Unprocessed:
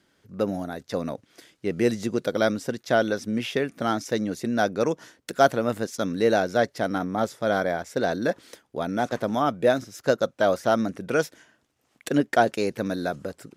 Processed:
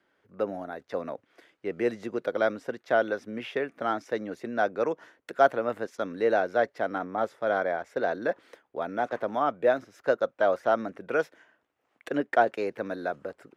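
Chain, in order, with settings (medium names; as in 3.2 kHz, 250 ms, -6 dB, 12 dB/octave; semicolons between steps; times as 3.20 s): three-band isolator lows -13 dB, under 340 Hz, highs -17 dB, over 2.7 kHz; trim -1.5 dB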